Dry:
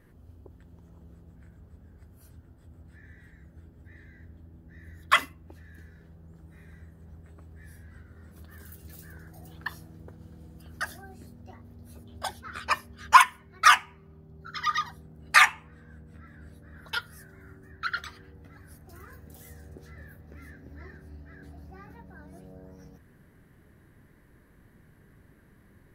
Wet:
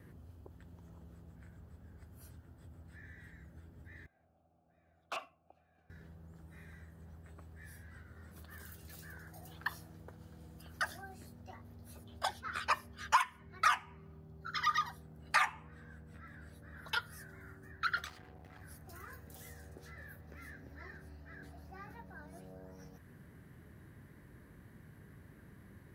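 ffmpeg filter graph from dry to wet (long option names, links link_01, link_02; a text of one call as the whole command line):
ffmpeg -i in.wav -filter_complex "[0:a]asettb=1/sr,asplit=3[link_01][link_02][link_03];[link_01]atrim=end=4.064[link_04];[link_02]atrim=start=4.06:end=5.9,asetpts=PTS-STARTPTS,afade=type=in:duration=0.004:curve=qsin,afade=type=out:start_time=1.836:duration=0.004:curve=qsin,aecho=1:1:1.4:0.33,atrim=end_sample=81144,aeval=exprs='(mod(6.68*val(0)+1,2)-1)/6.68':channel_layout=same,asplit=3[link_05][link_06][link_07];[link_05]bandpass=frequency=730:width_type=q:width=8,volume=0dB[link_08];[link_06]bandpass=frequency=1090:width_type=q:width=8,volume=-6dB[link_09];[link_07]bandpass=frequency=2440:width_type=q:width=8,volume=-9dB[link_10];[link_08][link_09][link_10]amix=inputs=3:normalize=0[link_11];[link_03]atrim=start=5.896[link_12];[link_04][link_11]acrossfade=duration=0.004:curve1=hsin:curve2=qsin[link_13];[link_13][link_12]acrossfade=duration=0.004:curve1=qsin:curve2=hsin,asettb=1/sr,asplit=3[link_14][link_15][link_16];[link_14]atrim=end=18.054[link_17];[link_15]atrim=start=18.05:end=18.62,asetpts=PTS-STARTPTS,afade=type=in:duration=0.004:curve=qsin,afade=type=out:start_time=0.566:duration=0.004:curve=qsin,aeval=exprs='val(0)+0.00126*sin(2*PI*740*n/s)':channel_layout=same,aeval=exprs='max(val(0),0)':channel_layout=same[link_18];[link_16]atrim=start=18.616[link_19];[link_17][link_18]acrossfade=duration=0.004:curve1=hsin:curve2=qsin[link_20];[link_20][link_19]acrossfade=duration=0.004:curve1=qsin:curve2=hsin,highpass=76,lowshelf=frequency=200:gain=8,acrossover=split=550|1200|7200[link_21][link_22][link_23][link_24];[link_21]acompressor=threshold=-53dB:ratio=4[link_25];[link_22]acompressor=threshold=-32dB:ratio=4[link_26];[link_23]acompressor=threshold=-36dB:ratio=4[link_27];[link_24]acompressor=threshold=-55dB:ratio=4[link_28];[link_25][link_26][link_27][link_28]amix=inputs=4:normalize=0" out.wav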